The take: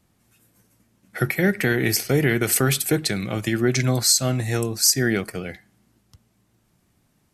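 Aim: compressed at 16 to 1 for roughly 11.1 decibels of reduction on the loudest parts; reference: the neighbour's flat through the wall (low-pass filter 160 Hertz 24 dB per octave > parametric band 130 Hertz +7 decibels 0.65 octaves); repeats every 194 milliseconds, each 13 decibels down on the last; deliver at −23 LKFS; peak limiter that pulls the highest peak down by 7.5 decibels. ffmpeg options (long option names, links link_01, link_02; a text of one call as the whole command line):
ffmpeg -i in.wav -af "acompressor=threshold=-25dB:ratio=16,alimiter=limit=-20.5dB:level=0:latency=1,lowpass=frequency=160:width=0.5412,lowpass=frequency=160:width=1.3066,equalizer=frequency=130:width_type=o:width=0.65:gain=7,aecho=1:1:194|388|582:0.224|0.0493|0.0108,volume=10dB" out.wav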